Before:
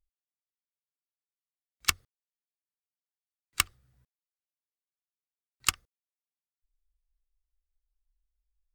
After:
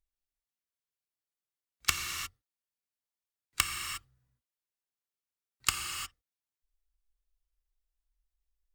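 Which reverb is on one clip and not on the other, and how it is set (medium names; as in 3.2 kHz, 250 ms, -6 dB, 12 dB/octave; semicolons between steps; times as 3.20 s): gated-style reverb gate 380 ms flat, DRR 2.5 dB; trim -2.5 dB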